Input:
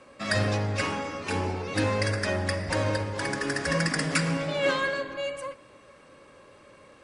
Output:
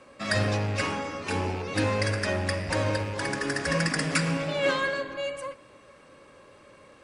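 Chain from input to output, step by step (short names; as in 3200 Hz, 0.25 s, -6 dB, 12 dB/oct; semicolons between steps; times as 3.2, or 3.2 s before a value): rattling part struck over -34 dBFS, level -32 dBFS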